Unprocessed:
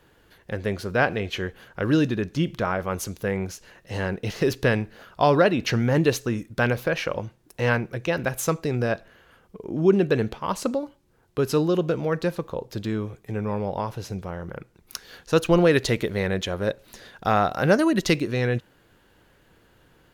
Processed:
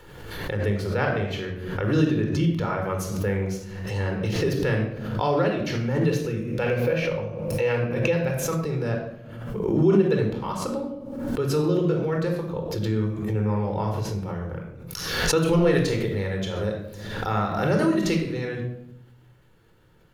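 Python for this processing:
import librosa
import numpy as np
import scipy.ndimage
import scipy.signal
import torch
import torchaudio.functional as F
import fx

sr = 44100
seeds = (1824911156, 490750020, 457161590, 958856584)

y = fx.graphic_eq_31(x, sr, hz=(160, 500, 1250, 2500, 8000), db=(4, 8, -3, 7, -3), at=(6.1, 8.43))
y = fx.rider(y, sr, range_db=4, speed_s=2.0)
y = fx.room_shoebox(y, sr, seeds[0], volume_m3=2000.0, walls='furnished', distance_m=4.3)
y = fx.pre_swell(y, sr, db_per_s=42.0)
y = F.gain(torch.from_numpy(y), -9.0).numpy()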